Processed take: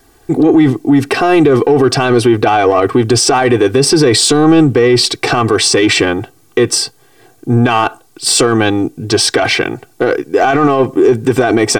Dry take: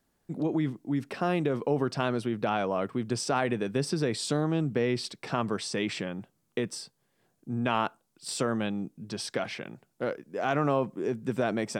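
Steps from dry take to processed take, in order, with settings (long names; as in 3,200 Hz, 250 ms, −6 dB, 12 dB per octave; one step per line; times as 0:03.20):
in parallel at −3 dB: soft clipping −29 dBFS, distortion −7 dB
on the sum: comb filter 2.6 ms, depth 91%
boost into a limiter +20 dB
level −1 dB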